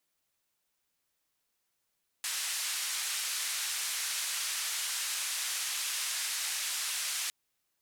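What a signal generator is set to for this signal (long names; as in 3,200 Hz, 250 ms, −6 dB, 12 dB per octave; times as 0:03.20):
band-limited noise 1,500–10,000 Hz, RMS −34.5 dBFS 5.06 s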